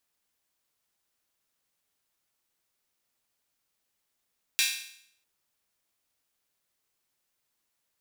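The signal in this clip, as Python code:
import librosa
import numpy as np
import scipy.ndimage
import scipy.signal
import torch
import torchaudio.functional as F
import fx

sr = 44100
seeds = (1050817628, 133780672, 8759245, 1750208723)

y = fx.drum_hat_open(sr, length_s=0.65, from_hz=2500.0, decay_s=0.66)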